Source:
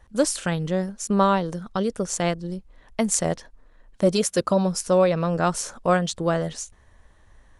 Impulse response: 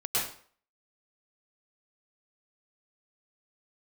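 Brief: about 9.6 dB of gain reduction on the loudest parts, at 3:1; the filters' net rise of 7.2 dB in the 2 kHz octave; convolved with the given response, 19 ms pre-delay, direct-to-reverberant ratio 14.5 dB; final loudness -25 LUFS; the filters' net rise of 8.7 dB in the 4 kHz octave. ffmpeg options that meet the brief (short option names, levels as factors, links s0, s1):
-filter_complex "[0:a]equalizer=f=2000:t=o:g=7.5,equalizer=f=4000:t=o:g=9,acompressor=threshold=0.0501:ratio=3,asplit=2[s0][s1];[1:a]atrim=start_sample=2205,adelay=19[s2];[s1][s2]afir=irnorm=-1:irlink=0,volume=0.0708[s3];[s0][s3]amix=inputs=2:normalize=0,volume=1.58"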